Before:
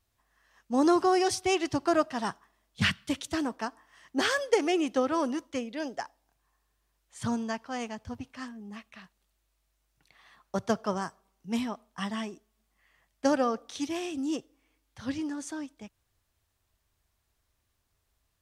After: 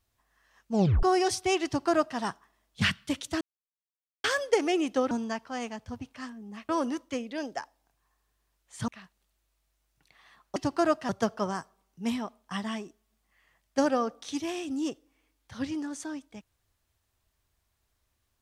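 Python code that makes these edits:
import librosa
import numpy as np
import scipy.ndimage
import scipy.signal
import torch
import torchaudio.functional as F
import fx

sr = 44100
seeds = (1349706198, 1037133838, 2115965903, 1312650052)

y = fx.edit(x, sr, fx.tape_stop(start_s=0.72, length_s=0.31),
    fx.duplicate(start_s=1.65, length_s=0.53, to_s=10.56),
    fx.silence(start_s=3.41, length_s=0.83),
    fx.move(start_s=7.3, length_s=1.58, to_s=5.11), tone=tone)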